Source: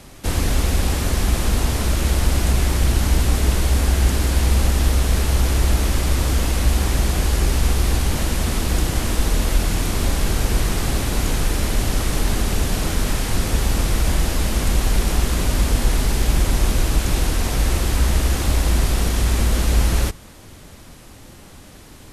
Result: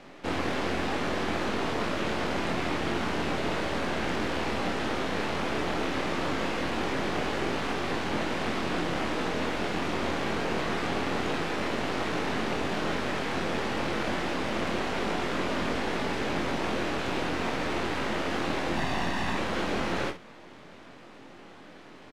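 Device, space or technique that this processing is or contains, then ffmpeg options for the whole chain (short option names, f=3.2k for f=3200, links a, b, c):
crystal radio: -filter_complex "[0:a]highpass=250,lowpass=2.7k,aeval=exprs='if(lt(val(0),0),0.447*val(0),val(0))':c=same,asettb=1/sr,asplit=3[a][b][c];[a]atrim=end=18.754[d];[b]atrim=start=18.75:end=19.35,asetpts=PTS-STARTPTS,afade=t=in:d=0.004:c=qsin,afade=t=out:st=0.596:d=0.004:c=qsin,aecho=1:1:1.1:0.55,atrim=end_sample=26460[e];[c]atrim=start=19.346[f];[d][e]acrossfade=d=0.004:c1=hsin:c2=qsin[g];[g][f]acrossfade=d=0.004:c1=qsin:c2=hsin,aecho=1:1:23|60|71:0.562|0.237|0.15"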